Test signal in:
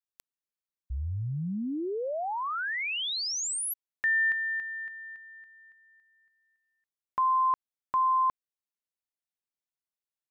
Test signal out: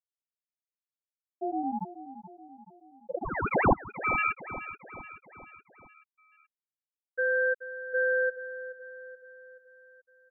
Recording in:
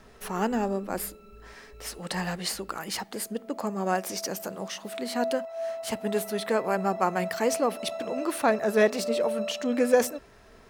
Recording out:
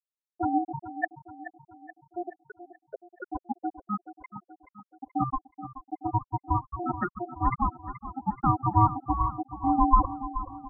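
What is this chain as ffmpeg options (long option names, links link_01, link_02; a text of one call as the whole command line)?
ffmpeg -i in.wav -af "aemphasis=mode=production:type=50fm,acrusher=bits=8:mode=log:mix=0:aa=0.000001,adynamicequalizer=threshold=0.00891:dfrequency=230:dqfactor=0.89:tfrequency=230:tqfactor=0.89:attack=5:release=100:ratio=0.375:range=2:mode=boostabove:tftype=bell,acrusher=samples=9:mix=1:aa=0.000001:lfo=1:lforange=5.4:lforate=1.7,afftfilt=real='re*gte(hypot(re,im),0.447)':imag='im*gte(hypot(re,im),0.447)':win_size=1024:overlap=0.75,aeval=exprs='val(0)*sin(2*PI*530*n/s)':channel_layout=same,aecho=1:1:428|856|1284|1712|2140:0.224|0.116|0.0605|0.0315|0.0164,volume=4dB" out.wav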